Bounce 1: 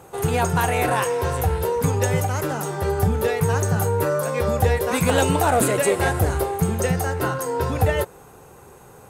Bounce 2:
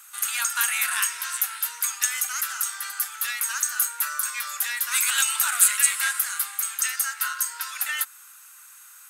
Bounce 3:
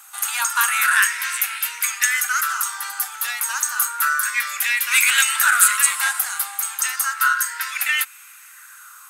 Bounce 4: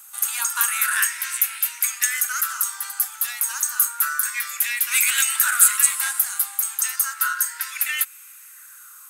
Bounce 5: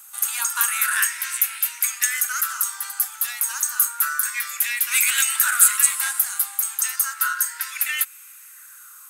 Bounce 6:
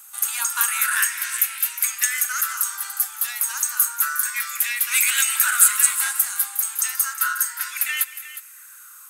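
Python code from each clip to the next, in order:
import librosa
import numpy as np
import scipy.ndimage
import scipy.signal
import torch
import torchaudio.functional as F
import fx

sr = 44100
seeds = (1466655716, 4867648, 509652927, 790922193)

y1 = scipy.signal.sosfilt(scipy.signal.cheby1(4, 1.0, 1300.0, 'highpass', fs=sr, output='sos'), x)
y1 = fx.high_shelf(y1, sr, hz=4700.0, db=11.5)
y2 = fx.bell_lfo(y1, sr, hz=0.31, low_hz=750.0, high_hz=2400.0, db=12)
y2 = y2 * 10.0 ** (2.5 / 20.0)
y3 = fx.highpass(y2, sr, hz=540.0, slope=6)
y3 = fx.high_shelf(y3, sr, hz=6900.0, db=11.5)
y3 = y3 * 10.0 ** (-7.0 / 20.0)
y4 = y3
y5 = fx.echo_multitap(y4, sr, ms=(185, 360), db=(-18.0, -14.0))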